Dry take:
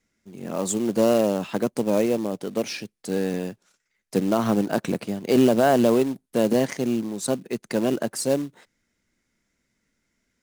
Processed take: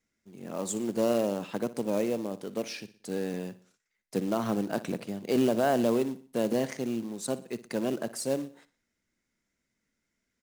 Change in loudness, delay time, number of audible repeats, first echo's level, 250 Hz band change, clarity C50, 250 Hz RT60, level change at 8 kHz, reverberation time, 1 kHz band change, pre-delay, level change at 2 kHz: -7.0 dB, 60 ms, 3, -16.5 dB, -7.5 dB, none, none, -7.0 dB, none, -7.0 dB, none, -7.0 dB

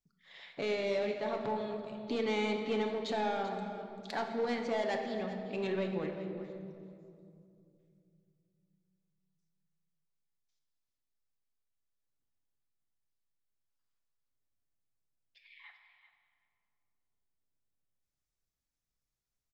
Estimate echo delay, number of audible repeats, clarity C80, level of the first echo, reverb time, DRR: 0.389 s, 1, 5.5 dB, -13.5 dB, 2.6 s, 2.0 dB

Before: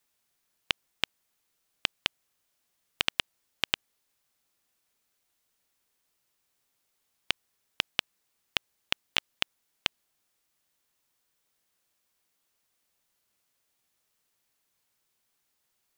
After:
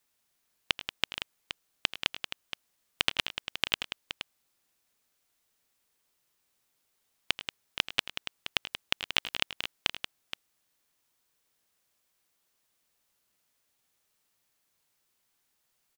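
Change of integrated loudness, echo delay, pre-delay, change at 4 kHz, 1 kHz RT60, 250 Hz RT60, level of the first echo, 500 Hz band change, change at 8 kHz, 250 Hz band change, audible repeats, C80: -0.5 dB, 84 ms, none, +1.0 dB, none, none, -15.5 dB, +1.0 dB, +1.0 dB, +1.0 dB, 3, none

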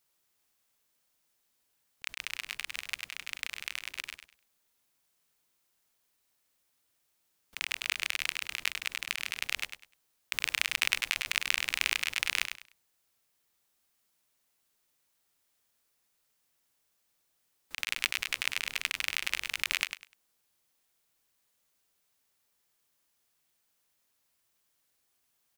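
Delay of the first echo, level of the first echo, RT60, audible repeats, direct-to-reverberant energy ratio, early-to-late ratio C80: 0.1 s, -8.5 dB, none, 3, none, none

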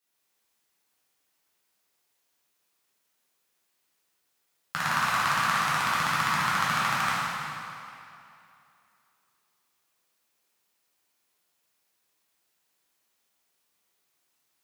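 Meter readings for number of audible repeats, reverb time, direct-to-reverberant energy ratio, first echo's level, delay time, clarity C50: none, 2.7 s, -10.0 dB, none, none, -4.0 dB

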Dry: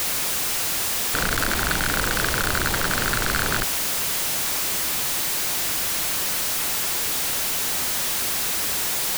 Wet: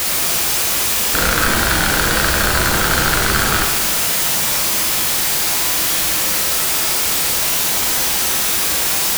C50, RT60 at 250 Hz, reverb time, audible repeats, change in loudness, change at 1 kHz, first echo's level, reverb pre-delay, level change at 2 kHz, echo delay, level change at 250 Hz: 3.0 dB, 1.4 s, 1.4 s, none, +7.5 dB, +8.0 dB, none, 6 ms, +7.0 dB, none, +7.5 dB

